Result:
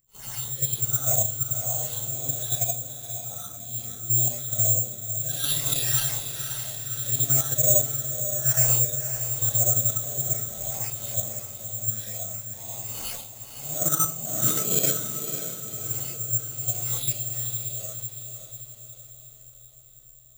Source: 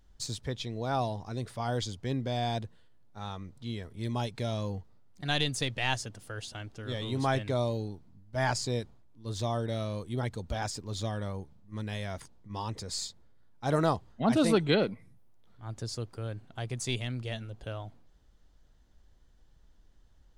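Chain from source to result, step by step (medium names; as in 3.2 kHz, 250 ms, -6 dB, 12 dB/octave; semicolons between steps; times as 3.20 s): phase randomisation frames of 200 ms; hum notches 50/100/150/200 Hz; phase shifter stages 8, 2 Hz, lowest notch 650–1800 Hz; ten-band graphic EQ 125 Hz +9 dB, 250 Hz -11 dB, 2 kHz -5 dB; reverberation RT60 0.35 s, pre-delay 65 ms, DRR -9.5 dB; in parallel at +3 dB: level held to a coarse grid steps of 22 dB; on the sum: treble shelf 8.6 kHz +6.5 dB; comb of notches 1 kHz; echo that smears into a reverb 541 ms, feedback 53%, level -8 dB; careless resampling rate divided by 6×, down none, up zero stuff; trim -13 dB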